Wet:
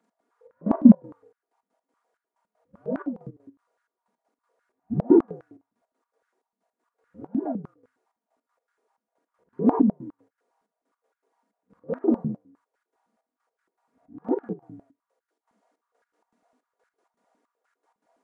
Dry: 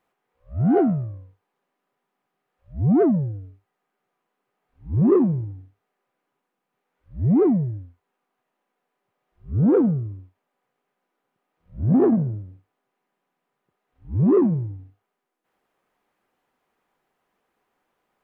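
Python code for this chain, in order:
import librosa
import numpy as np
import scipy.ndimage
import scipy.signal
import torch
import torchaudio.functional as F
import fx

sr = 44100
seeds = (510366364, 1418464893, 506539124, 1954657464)

y = fx.partial_stretch(x, sr, pct=84)
y = y + 0.61 * np.pad(y, (int(4.2 * sr / 1000.0), 0))[:len(y)]
y = fx.step_gate(y, sr, bpm=159, pattern='x.xxx..x.', floor_db=-12.0, edge_ms=4.5)
y = fx.filter_held_highpass(y, sr, hz=9.8, low_hz=210.0, high_hz=1500.0)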